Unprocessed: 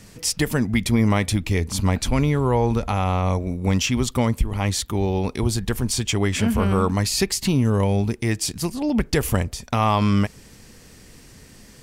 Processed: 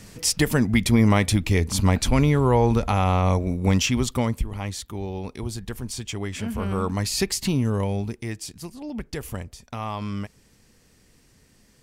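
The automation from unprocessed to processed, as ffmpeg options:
-af "volume=8dB,afade=t=out:st=3.63:d=1.1:silence=0.316228,afade=t=in:st=6.47:d=0.85:silence=0.446684,afade=t=out:st=7.32:d=1.19:silence=0.334965"

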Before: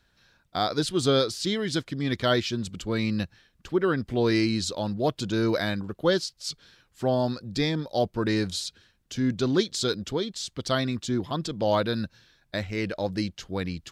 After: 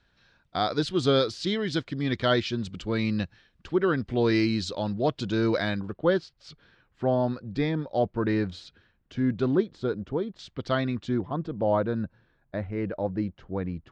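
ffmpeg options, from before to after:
-af "asetnsamples=n=441:p=0,asendcmd='5.93 lowpass f 2100;9.55 lowpass f 1200;10.39 lowpass f 2500;11.21 lowpass f 1200',lowpass=4.4k"

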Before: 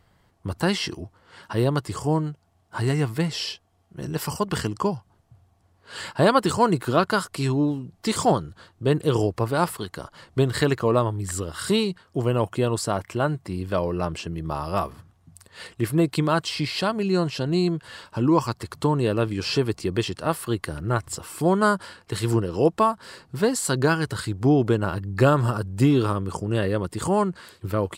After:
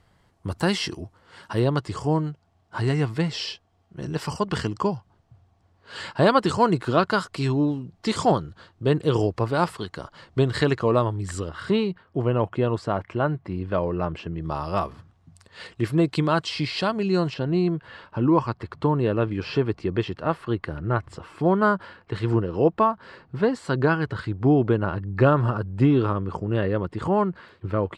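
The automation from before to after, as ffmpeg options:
-af "asetnsamples=n=441:p=0,asendcmd='1.59 lowpass f 5700;11.49 lowpass f 2500;14.41 lowpass f 5700;17.34 lowpass f 2500',lowpass=11k"

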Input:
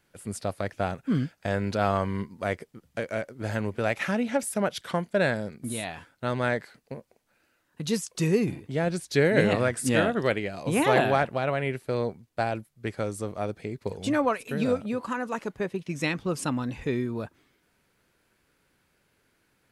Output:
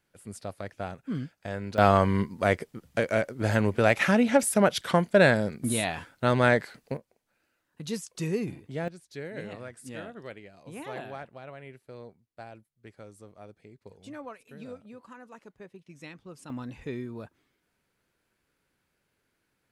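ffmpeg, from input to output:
-af "asetnsamples=n=441:p=0,asendcmd='1.78 volume volume 5dB;6.97 volume volume -6dB;8.88 volume volume -17dB;16.5 volume volume -7.5dB',volume=-7dB"

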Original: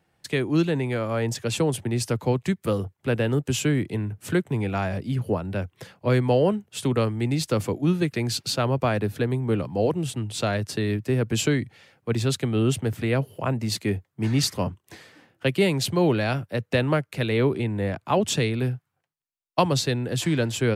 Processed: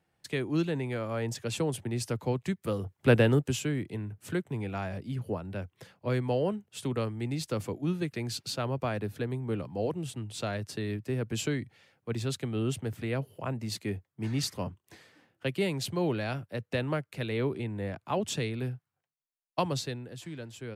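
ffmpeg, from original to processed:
-af "volume=3dB,afade=t=in:st=2.81:d=0.29:silence=0.316228,afade=t=out:st=3.1:d=0.5:silence=0.266073,afade=t=out:st=19.71:d=0.45:silence=0.334965"

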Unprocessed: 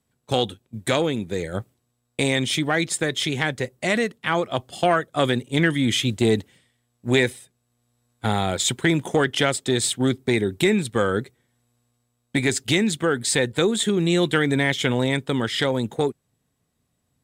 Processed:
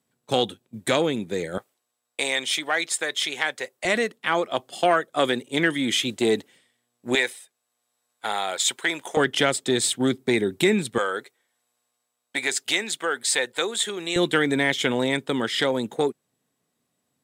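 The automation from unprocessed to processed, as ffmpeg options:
-af "asetnsamples=n=441:p=0,asendcmd='1.58 highpass f 620;3.85 highpass f 280;7.15 highpass f 660;9.17 highpass f 180;10.98 highpass f 620;14.16 highpass f 220',highpass=170"

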